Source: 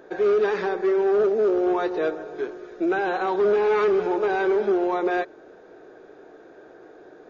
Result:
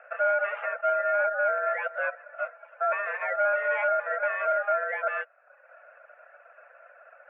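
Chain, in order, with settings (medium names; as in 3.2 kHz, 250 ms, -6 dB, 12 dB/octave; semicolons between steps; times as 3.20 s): reverb removal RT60 0.82 s; hard clipper -17.5 dBFS, distortion -25 dB; ring modulator 710 Hz; mistuned SSB +310 Hz 200–2100 Hz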